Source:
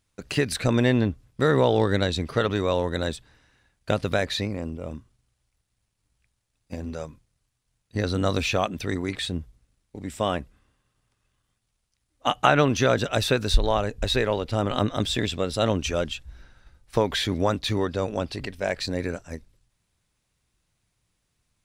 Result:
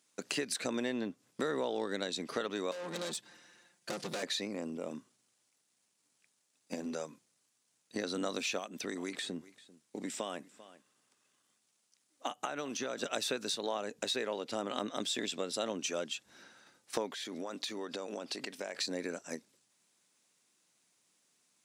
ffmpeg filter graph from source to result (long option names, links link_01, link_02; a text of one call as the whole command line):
ffmpeg -i in.wav -filter_complex "[0:a]asettb=1/sr,asplit=3[link_01][link_02][link_03];[link_01]atrim=end=2.714[link_04];[link_02]atrim=start=2.71:end=4.23,asetpts=PTS-STARTPTS,afade=type=in:duration=0.004:curve=qsin,afade=type=out:start_time=1.516:duration=0.004:curve=qsin,lowshelf=frequency=74:gain=12,aecho=1:1:5.7:0.85,atrim=end_sample=67032,aeval=exprs='(tanh(35.5*val(0)+0.35)-tanh(0.35))/35.5':channel_layout=same[link_05];[link_03]atrim=start=4.226[link_06];[link_04][link_05]acrossfade=duration=0.004:curve1=hsin:curve2=qsin[link_07];[link_07][link_06]acrossfade=duration=0.004:curve1=qsin:curve2=hsin,asettb=1/sr,asplit=3[link_08][link_09][link_10];[link_08]atrim=end=8.584[link_11];[link_09]atrim=start=8.58:end=13.03,asetpts=PTS-STARTPTS,afade=type=in:duration=0.004:curve=qsin,afade=type=out:start_time=4.446:duration=0.004:curve=qsin,acrossover=split=1600|6100[link_12][link_13][link_14];[link_12]acompressor=threshold=-30dB:ratio=4[link_15];[link_13]acompressor=threshold=-42dB:ratio=4[link_16];[link_14]acompressor=threshold=-53dB:ratio=4[link_17];[link_15][link_16][link_17]amix=inputs=3:normalize=0,aecho=1:1:392:0.0708,atrim=end_sample=196245[link_18];[link_10]atrim=start=13.026[link_19];[link_11][link_18]acrossfade=duration=0.004:curve1=hsin:curve2=qsin[link_20];[link_20][link_19]acrossfade=duration=0.004:curve1=qsin:curve2=hsin,asettb=1/sr,asplit=3[link_21][link_22][link_23];[link_21]atrim=end=17.124[link_24];[link_22]atrim=start=17.12:end=18.75,asetpts=PTS-STARTPTS,afade=type=in:duration=0.004:curve=qsin,afade=type=out:start_time=1.626:duration=0.004:curve=qsin,equalizer=frequency=74:width_type=o:width=2.2:gain=-9,acompressor=threshold=-33dB:ratio=10:attack=3.2:release=140:knee=1:detection=peak[link_25];[link_23]atrim=start=18.746[link_26];[link_24][link_25]acrossfade=duration=0.004:curve1=hsin:curve2=qsin[link_27];[link_27][link_26]acrossfade=duration=0.004:curve1=qsin:curve2=hsin,highpass=frequency=210:width=0.5412,highpass=frequency=210:width=1.3066,equalizer=frequency=7100:width=1:gain=7.5,acompressor=threshold=-36dB:ratio=3" out.wav